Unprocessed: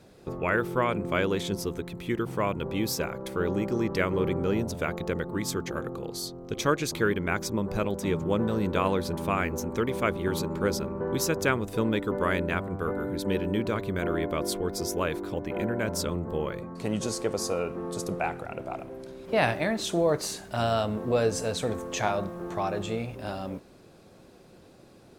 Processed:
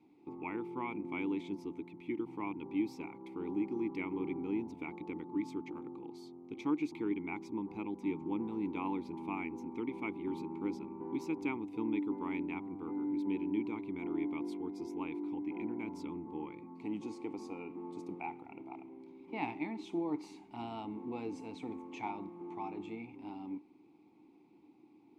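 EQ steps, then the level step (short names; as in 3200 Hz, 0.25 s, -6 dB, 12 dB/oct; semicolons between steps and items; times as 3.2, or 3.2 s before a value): vowel filter u; high shelf 9800 Hz +3 dB; +1.5 dB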